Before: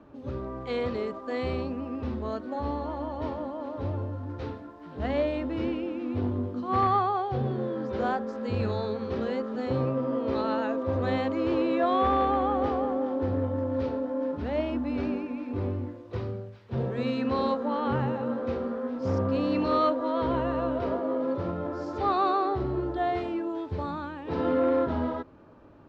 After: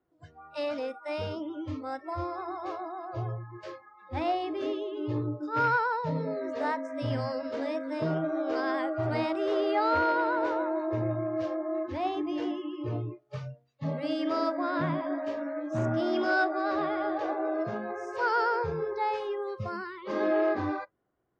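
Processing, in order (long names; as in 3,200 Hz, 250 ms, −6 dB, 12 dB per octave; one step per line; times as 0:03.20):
noise reduction from a noise print of the clip's start 24 dB
speed change +21%
level −1.5 dB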